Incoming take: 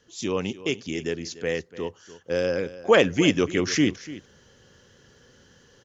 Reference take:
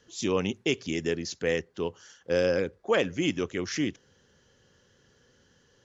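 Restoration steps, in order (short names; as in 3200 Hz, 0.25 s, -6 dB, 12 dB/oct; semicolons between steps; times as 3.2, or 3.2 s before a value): inverse comb 0.293 s -16.5 dB; gain correction -7.5 dB, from 2.8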